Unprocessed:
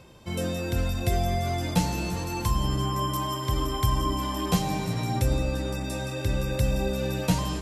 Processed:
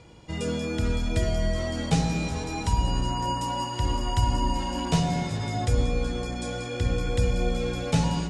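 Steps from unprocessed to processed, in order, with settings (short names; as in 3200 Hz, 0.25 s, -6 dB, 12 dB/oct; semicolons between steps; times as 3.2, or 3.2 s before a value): steep low-pass 10000 Hz 36 dB/oct; on a send at -8 dB: tilt shelf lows +5.5 dB + reverb RT60 0.90 s, pre-delay 49 ms; on the sum: speed mistake 48 kHz file played as 44.1 kHz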